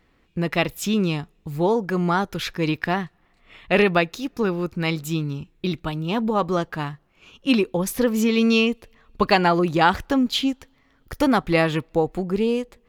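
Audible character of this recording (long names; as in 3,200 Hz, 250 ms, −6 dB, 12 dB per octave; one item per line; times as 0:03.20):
background noise floor −62 dBFS
spectral slope −4.5 dB per octave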